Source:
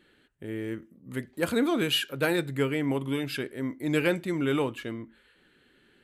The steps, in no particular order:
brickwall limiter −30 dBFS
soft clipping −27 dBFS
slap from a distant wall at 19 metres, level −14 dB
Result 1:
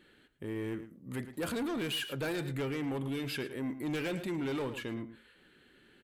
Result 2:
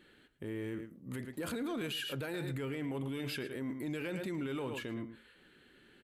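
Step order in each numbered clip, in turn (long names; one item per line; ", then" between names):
soft clipping, then slap from a distant wall, then brickwall limiter
slap from a distant wall, then brickwall limiter, then soft clipping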